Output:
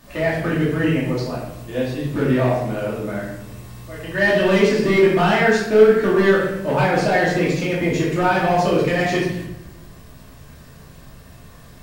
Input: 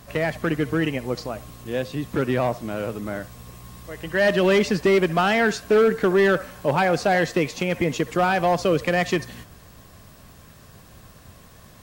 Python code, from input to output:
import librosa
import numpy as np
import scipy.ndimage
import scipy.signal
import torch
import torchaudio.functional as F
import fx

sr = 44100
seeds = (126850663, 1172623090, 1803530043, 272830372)

y = fx.room_shoebox(x, sr, seeds[0], volume_m3=260.0, walls='mixed', distance_m=2.6)
y = F.gain(torch.from_numpy(y), -5.5).numpy()